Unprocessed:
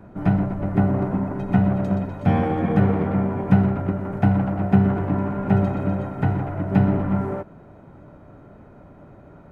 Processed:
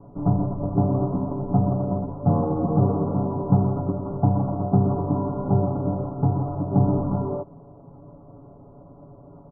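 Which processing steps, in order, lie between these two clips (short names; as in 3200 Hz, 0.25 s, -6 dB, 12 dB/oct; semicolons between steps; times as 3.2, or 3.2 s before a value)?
steep low-pass 1200 Hz 72 dB/oct; comb 7.1 ms, depth 75%; gain -2.5 dB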